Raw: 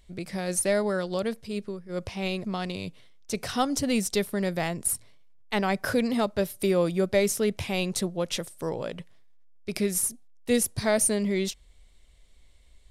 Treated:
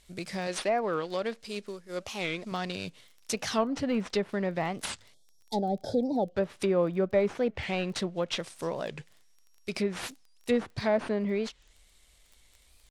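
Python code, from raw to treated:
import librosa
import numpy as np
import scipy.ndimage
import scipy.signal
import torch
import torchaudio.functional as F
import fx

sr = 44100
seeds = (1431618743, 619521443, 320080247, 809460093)

y = fx.cvsd(x, sr, bps=64000)
y = fx.peak_eq(y, sr, hz=110.0, db=-14.5, octaves=1.2, at=(0.47, 2.52))
y = fx.env_lowpass_down(y, sr, base_hz=1400.0, full_db=-22.0)
y = fx.spec_box(y, sr, start_s=5.14, length_s=1.22, low_hz=900.0, high_hz=3200.0, gain_db=-27)
y = fx.dmg_crackle(y, sr, seeds[0], per_s=11.0, level_db=-46.0)
y = fx.tilt_eq(y, sr, slope=1.5)
y = fx.record_warp(y, sr, rpm=45.0, depth_cents=250.0)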